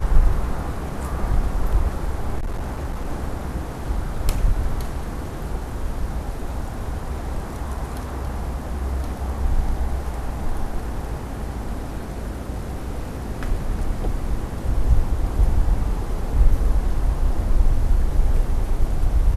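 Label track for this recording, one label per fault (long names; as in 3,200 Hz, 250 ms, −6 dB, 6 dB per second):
2.390000	3.080000	clipping −21.5 dBFS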